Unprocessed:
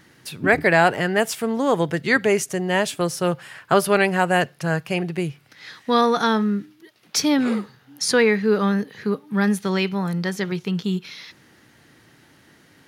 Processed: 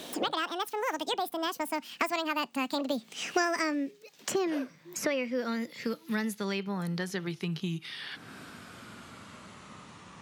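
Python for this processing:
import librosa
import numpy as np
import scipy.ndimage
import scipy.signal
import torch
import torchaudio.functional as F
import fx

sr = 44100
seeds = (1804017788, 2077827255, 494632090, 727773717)

y = fx.speed_glide(x, sr, from_pct=191, to_pct=61)
y = fx.doppler_pass(y, sr, speed_mps=13, closest_m=4.5, pass_at_s=3.45)
y = fx.band_squash(y, sr, depth_pct=100)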